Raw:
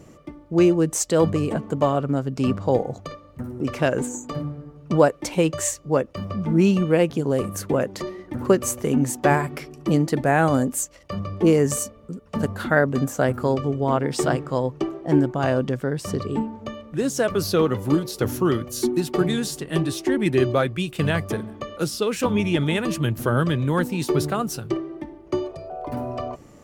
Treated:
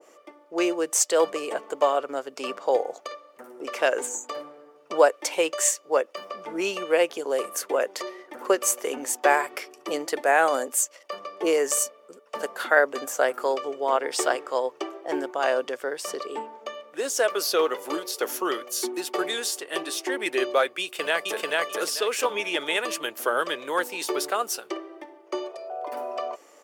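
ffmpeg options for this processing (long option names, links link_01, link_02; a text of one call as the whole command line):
ffmpeg -i in.wav -filter_complex "[0:a]asplit=2[link_01][link_02];[link_02]afade=type=in:start_time=20.81:duration=0.01,afade=type=out:start_time=21.45:duration=0.01,aecho=0:1:440|880|1320:0.944061|0.188812|0.0377624[link_03];[link_01][link_03]amix=inputs=2:normalize=0,highpass=frequency=440:width=0.5412,highpass=frequency=440:width=1.3066,bandreject=frequency=4000:width=19,adynamicequalizer=threshold=0.0178:dfrequency=1500:dqfactor=0.7:tfrequency=1500:tqfactor=0.7:attack=5:release=100:ratio=0.375:range=1.5:mode=boostabove:tftype=highshelf" out.wav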